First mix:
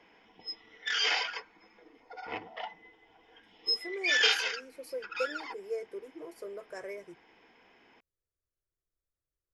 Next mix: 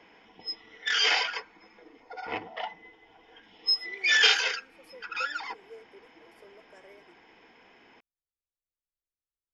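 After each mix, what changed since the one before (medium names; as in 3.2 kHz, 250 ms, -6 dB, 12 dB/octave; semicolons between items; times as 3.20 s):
speech -12.0 dB; background +4.5 dB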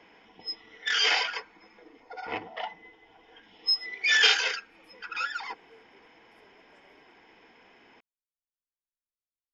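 speech -9.5 dB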